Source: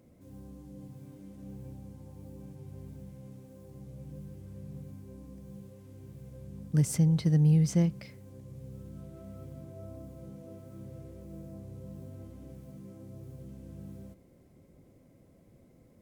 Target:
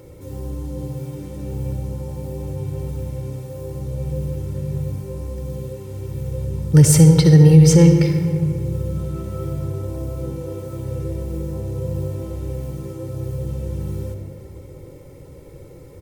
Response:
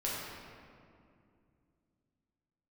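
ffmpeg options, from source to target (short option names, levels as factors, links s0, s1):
-filter_complex "[0:a]aecho=1:1:2.2:0.9,asplit=2[s0][s1];[1:a]atrim=start_sample=2205,asetrate=48510,aresample=44100,adelay=60[s2];[s1][s2]afir=irnorm=-1:irlink=0,volume=0.299[s3];[s0][s3]amix=inputs=2:normalize=0,alimiter=level_in=7.08:limit=0.891:release=50:level=0:latency=1,volume=0.891"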